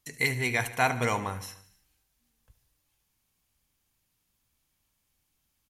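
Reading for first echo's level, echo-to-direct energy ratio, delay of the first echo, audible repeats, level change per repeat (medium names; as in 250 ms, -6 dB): -15.0 dB, -13.0 dB, 74 ms, 4, -4.5 dB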